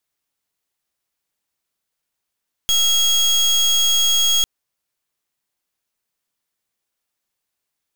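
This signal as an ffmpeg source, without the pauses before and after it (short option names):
-f lavfi -i "aevalsrc='0.158*(2*lt(mod(3290*t,1),0.29)-1)':d=1.75:s=44100"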